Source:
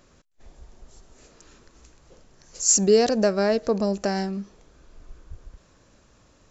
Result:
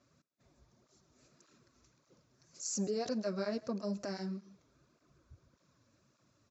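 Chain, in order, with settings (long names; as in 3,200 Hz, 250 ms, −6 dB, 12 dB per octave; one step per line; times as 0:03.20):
0:02.64–0:03.09: parametric band 620 Hz +5.5 dB 1.9 octaves
brickwall limiter −13.5 dBFS, peak gain reduction 8.5 dB
loudspeaker in its box 110–6,600 Hz, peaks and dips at 130 Hz +5 dB, 450 Hz −7 dB, 800 Hz −9 dB, 1,800 Hz −5 dB, 3,000 Hz −8 dB
single-tap delay 131 ms −21.5 dB
through-zero flanger with one copy inverted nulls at 1.7 Hz, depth 6.6 ms
level −8 dB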